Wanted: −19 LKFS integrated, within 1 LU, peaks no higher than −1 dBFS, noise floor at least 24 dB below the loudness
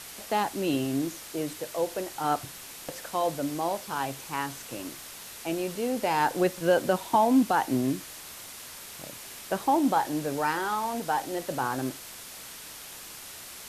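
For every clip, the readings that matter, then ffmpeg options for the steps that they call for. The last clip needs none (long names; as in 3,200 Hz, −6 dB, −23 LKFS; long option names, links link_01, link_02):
background noise floor −44 dBFS; target noise floor −53 dBFS; integrated loudness −28.5 LKFS; sample peak −11.5 dBFS; target loudness −19.0 LKFS
→ -af "afftdn=noise_reduction=9:noise_floor=-44"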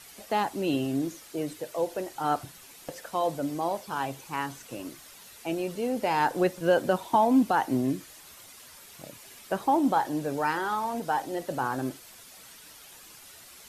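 background noise floor −50 dBFS; target noise floor −53 dBFS
→ -af "afftdn=noise_reduction=6:noise_floor=-50"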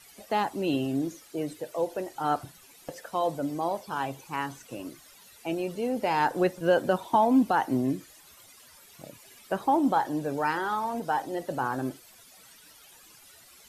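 background noise floor −54 dBFS; integrated loudness −28.5 LKFS; sample peak −12.0 dBFS; target loudness −19.0 LKFS
→ -af "volume=9.5dB"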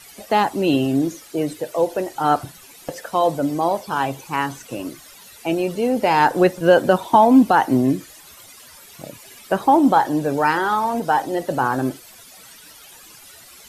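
integrated loudness −19.0 LKFS; sample peak −2.5 dBFS; background noise floor −45 dBFS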